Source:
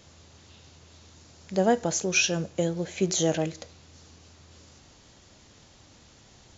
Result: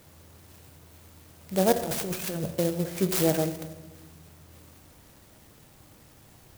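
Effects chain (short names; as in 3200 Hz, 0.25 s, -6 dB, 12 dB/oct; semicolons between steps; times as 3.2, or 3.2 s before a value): 1.72–2.55 negative-ratio compressor -33 dBFS, ratio -1; shoebox room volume 620 m³, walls mixed, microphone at 0.55 m; clock jitter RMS 0.084 ms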